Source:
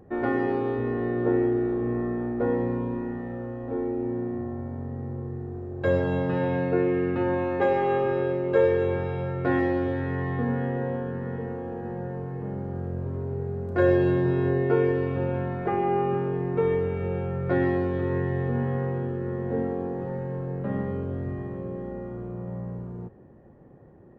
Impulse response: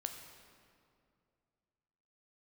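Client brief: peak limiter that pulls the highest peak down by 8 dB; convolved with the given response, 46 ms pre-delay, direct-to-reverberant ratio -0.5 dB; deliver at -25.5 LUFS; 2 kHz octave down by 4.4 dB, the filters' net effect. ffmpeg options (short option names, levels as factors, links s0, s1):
-filter_complex "[0:a]equalizer=f=2000:t=o:g=-5.5,alimiter=limit=0.133:level=0:latency=1,asplit=2[s0][s1];[1:a]atrim=start_sample=2205,adelay=46[s2];[s1][s2]afir=irnorm=-1:irlink=0,volume=1.19[s3];[s0][s3]amix=inputs=2:normalize=0,volume=1.19"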